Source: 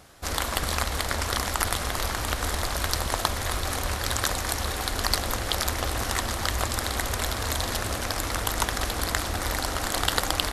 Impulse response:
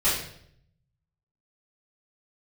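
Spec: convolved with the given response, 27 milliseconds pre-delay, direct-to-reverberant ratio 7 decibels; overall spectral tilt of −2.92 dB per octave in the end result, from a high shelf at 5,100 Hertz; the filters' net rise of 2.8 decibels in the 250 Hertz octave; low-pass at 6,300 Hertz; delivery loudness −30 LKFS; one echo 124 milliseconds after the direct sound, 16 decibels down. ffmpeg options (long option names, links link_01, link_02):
-filter_complex "[0:a]lowpass=6300,equalizer=frequency=250:width_type=o:gain=3.5,highshelf=frequency=5100:gain=5.5,aecho=1:1:124:0.158,asplit=2[link_01][link_02];[1:a]atrim=start_sample=2205,adelay=27[link_03];[link_02][link_03]afir=irnorm=-1:irlink=0,volume=-20.5dB[link_04];[link_01][link_04]amix=inputs=2:normalize=0,volume=-4dB"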